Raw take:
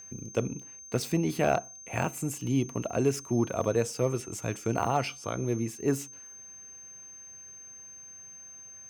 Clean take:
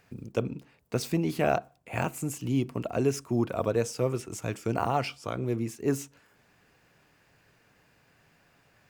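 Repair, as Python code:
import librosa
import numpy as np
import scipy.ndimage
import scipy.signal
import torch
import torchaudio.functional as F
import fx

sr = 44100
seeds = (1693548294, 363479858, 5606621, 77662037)

y = fx.fix_declip(x, sr, threshold_db=-14.5)
y = fx.notch(y, sr, hz=6300.0, q=30.0)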